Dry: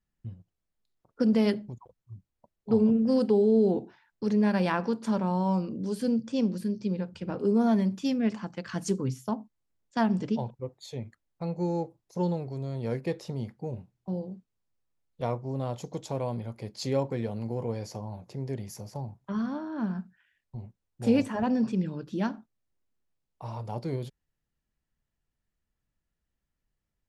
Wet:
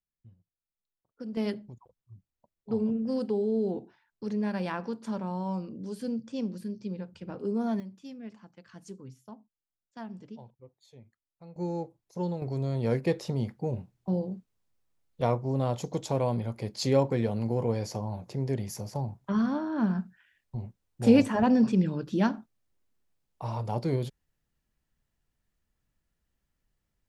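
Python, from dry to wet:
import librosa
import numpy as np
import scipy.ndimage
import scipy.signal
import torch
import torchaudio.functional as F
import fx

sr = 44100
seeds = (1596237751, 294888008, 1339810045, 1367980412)

y = fx.gain(x, sr, db=fx.steps((0.0, -15.0), (1.37, -6.0), (7.8, -16.0), (11.56, -3.5), (12.42, 4.0)))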